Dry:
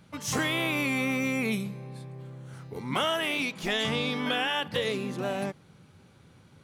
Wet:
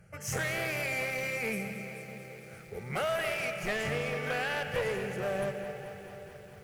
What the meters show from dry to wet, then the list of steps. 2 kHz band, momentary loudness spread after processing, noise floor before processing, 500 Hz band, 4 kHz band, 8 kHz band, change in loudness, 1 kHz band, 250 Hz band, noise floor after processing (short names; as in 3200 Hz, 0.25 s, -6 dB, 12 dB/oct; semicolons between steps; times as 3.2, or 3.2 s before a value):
-2.0 dB, 14 LU, -57 dBFS, -0.5 dB, -10.5 dB, -3.0 dB, -4.5 dB, -4.5 dB, -10.0 dB, -50 dBFS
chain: low shelf 230 Hz +4.5 dB; fixed phaser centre 1000 Hz, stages 6; digital reverb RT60 3.5 s, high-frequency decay 0.55×, pre-delay 70 ms, DRR 8.5 dB; one-sided clip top -32 dBFS; lo-fi delay 0.218 s, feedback 80%, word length 9-bit, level -13 dB